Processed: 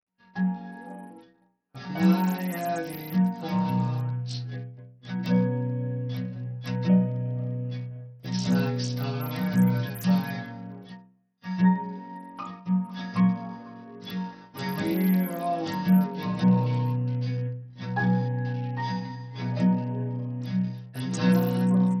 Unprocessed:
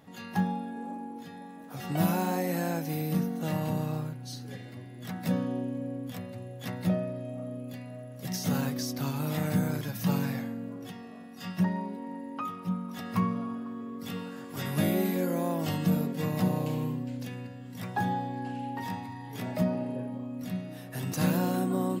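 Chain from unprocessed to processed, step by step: gate -40 dBFS, range -34 dB; level rider gain up to 9.5 dB; inharmonic resonator 60 Hz, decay 0.73 s, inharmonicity 0.008; trim +4.5 dB; SBC 64 kbps 44.1 kHz

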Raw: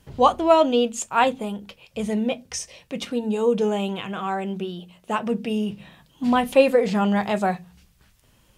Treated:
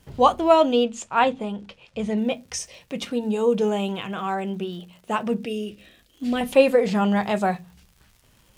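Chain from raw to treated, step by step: 5.45–6.41 s: static phaser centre 380 Hz, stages 4; crackle 150 per s -44 dBFS; 0.84–2.18 s: distance through air 79 m

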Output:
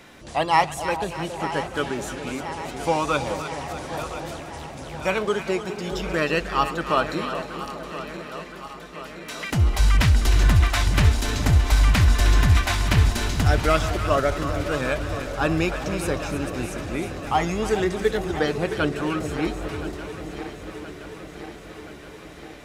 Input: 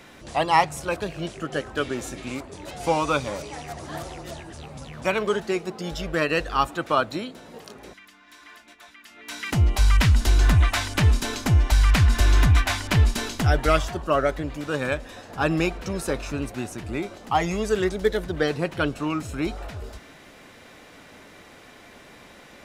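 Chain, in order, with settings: backward echo that repeats 511 ms, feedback 79%, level -12.5 dB; two-band feedback delay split 890 Hz, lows 415 ms, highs 309 ms, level -10 dB

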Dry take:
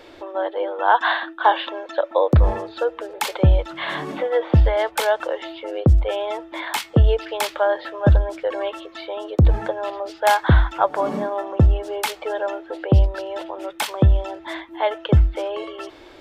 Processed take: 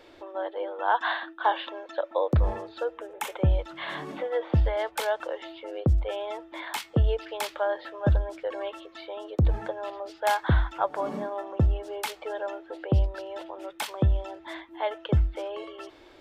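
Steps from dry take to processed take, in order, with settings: 2.97–3.50 s: peaking EQ 4.5 kHz -14.5 dB 0.39 oct; trim -8 dB

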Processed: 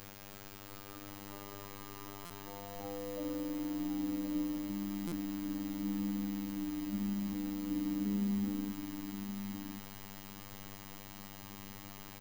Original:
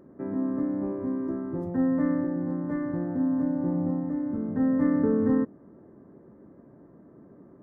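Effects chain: fade-in on the opening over 0.89 s; in parallel at +1.5 dB: compression, threshold -30 dBFS, peak gain reduction 10.5 dB; on the sum: band-pass sweep 1.3 kHz -> 200 Hz, 1.10–2.95 s; time stretch by phase-locked vocoder 1.6×; added noise pink -42 dBFS; robot voice 100 Hz; delay 1071 ms -8 dB; buffer glitch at 2.25/5.07 s, samples 256, times 8; trim -6.5 dB

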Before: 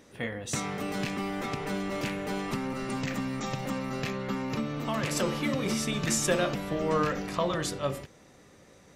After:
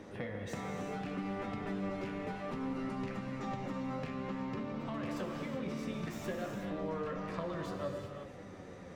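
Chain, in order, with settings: self-modulated delay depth 0.1 ms; low-pass 1.4 kHz 6 dB/octave; compression 4:1, threshold -40 dBFS, peak gain reduction 15 dB; gated-style reverb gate 410 ms flat, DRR 3 dB; flange 0.61 Hz, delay 9.5 ms, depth 2.4 ms, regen +49%; three bands compressed up and down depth 40%; trim +5 dB

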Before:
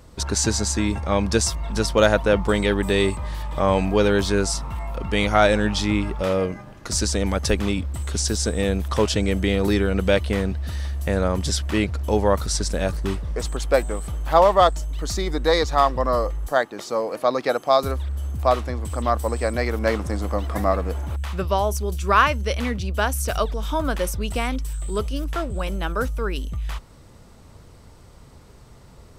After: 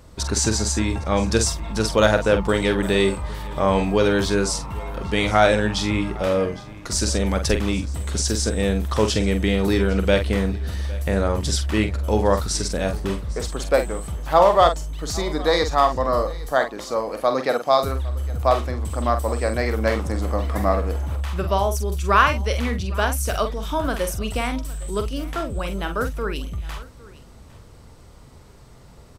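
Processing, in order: doubling 46 ms -8 dB; on a send: delay 809 ms -20.5 dB

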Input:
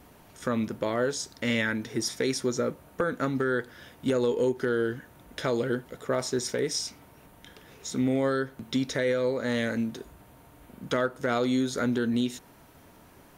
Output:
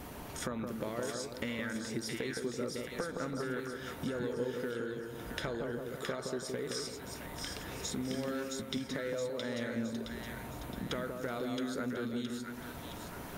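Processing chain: dynamic bell 6.1 kHz, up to -6 dB, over -50 dBFS, Q 3; compression 6:1, threshold -45 dBFS, peak gain reduction 21 dB; on a send: two-band feedback delay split 1.3 kHz, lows 167 ms, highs 668 ms, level -3.5 dB; on the sum: trim +7.5 dB

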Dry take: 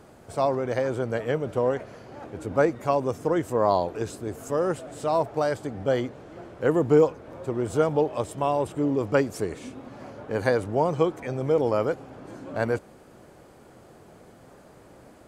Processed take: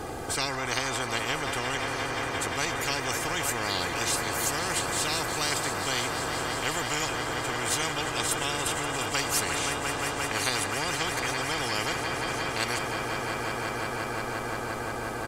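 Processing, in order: comb 2.5 ms, depth 69%; echo with a slow build-up 175 ms, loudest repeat 5, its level -15 dB; spectrum-flattening compressor 10:1; trim -6.5 dB

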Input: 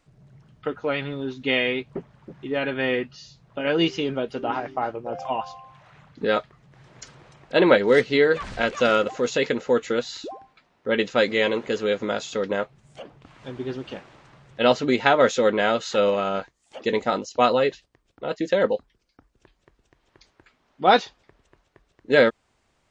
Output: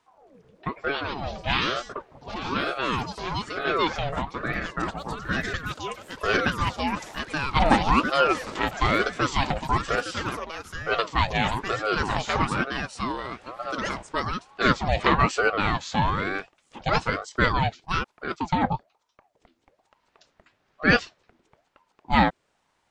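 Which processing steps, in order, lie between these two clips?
ever faster or slower copies 341 ms, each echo +4 st, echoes 3, each echo -6 dB; ring modulator with a swept carrier 630 Hz, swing 55%, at 1.1 Hz

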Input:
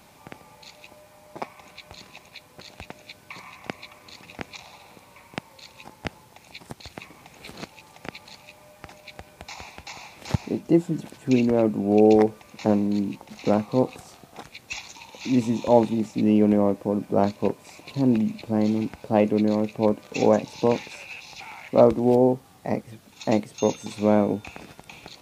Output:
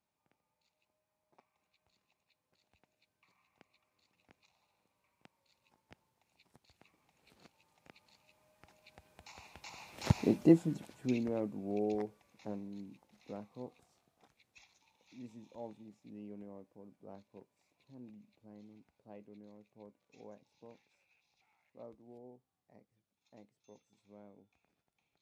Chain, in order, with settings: Doppler pass-by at 10.28 s, 8 m/s, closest 1.8 m; trim -2 dB

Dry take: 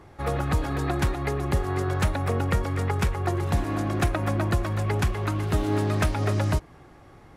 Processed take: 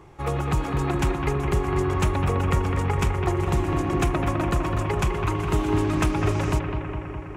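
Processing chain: rippled EQ curve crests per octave 0.71, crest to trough 6 dB; bucket-brigade echo 206 ms, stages 4096, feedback 73%, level -6 dB

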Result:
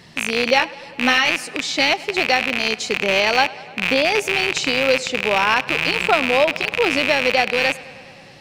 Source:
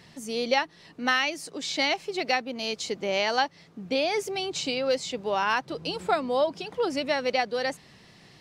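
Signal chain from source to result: rattle on loud lows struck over -46 dBFS, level -14 dBFS; 0.58–1.31 s: doubling 16 ms -5 dB; tape echo 102 ms, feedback 83%, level -20 dB, low-pass 6 kHz; trim +7 dB

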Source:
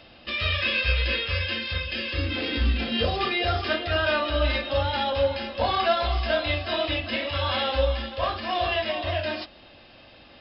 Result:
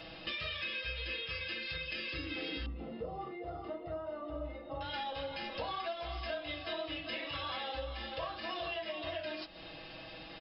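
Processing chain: comb 6.2 ms, depth 77%; compression 6:1, threshold -38 dBFS, peak gain reduction 21 dB; 2.66–4.81 s: Savitzky-Golay filter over 65 samples

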